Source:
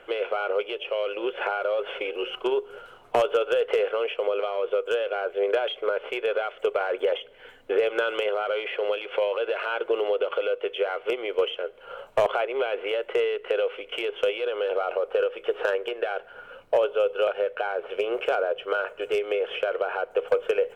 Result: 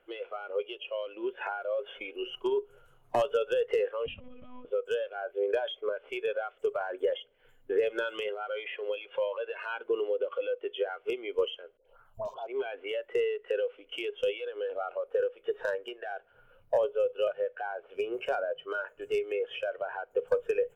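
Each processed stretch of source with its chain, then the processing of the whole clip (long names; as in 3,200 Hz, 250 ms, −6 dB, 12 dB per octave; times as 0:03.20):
0:04.06–0:04.65: downward compressor, threshold −33 dBFS + spectral tilt +2 dB per octave + one-pitch LPC vocoder at 8 kHz 250 Hz
0:11.77–0:12.47: downward compressor 10 to 1, threshold −22 dBFS + all-pass dispersion highs, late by 82 ms, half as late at 960 Hz + phaser swept by the level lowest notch 160 Hz, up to 2,000 Hz, full sweep at −28.5 dBFS
whole clip: noise reduction from a noise print of the clip's start 13 dB; low-shelf EQ 280 Hz +6 dB; level −5.5 dB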